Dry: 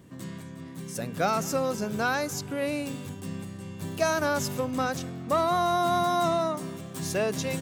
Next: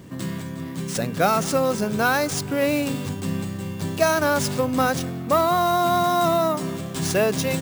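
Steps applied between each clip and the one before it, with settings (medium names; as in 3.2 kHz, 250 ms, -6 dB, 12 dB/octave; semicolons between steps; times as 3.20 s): in parallel at +1 dB: gain riding within 5 dB 0.5 s; on the sum: sample-rate reducer 16 kHz, jitter 0%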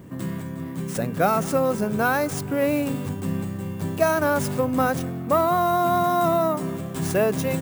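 peaking EQ 4.6 kHz -9.5 dB 1.8 oct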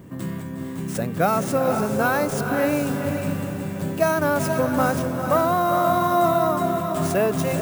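echo that smears into a reverb 459 ms, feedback 44%, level -5.5 dB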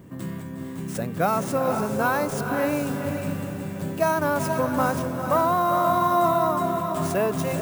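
dynamic bell 1 kHz, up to +7 dB, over -40 dBFS, Q 5.6; trim -3 dB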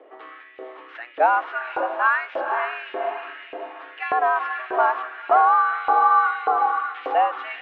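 mistuned SSB +120 Hz 170–3100 Hz; LFO high-pass saw up 1.7 Hz 540–2500 Hz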